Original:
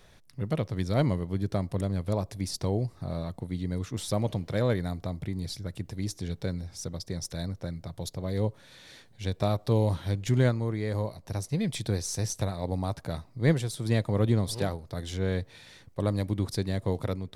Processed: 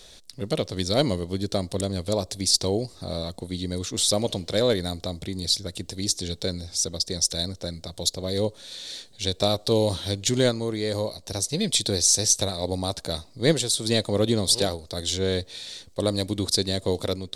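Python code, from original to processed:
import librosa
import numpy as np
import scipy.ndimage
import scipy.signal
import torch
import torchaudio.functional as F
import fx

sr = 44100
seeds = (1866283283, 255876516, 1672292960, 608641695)

y = fx.graphic_eq(x, sr, hz=(125, 500, 1000, 2000, 4000, 8000), db=(-10, 3, -4, -4, 11, 10))
y = F.gain(torch.from_numpy(y), 5.0).numpy()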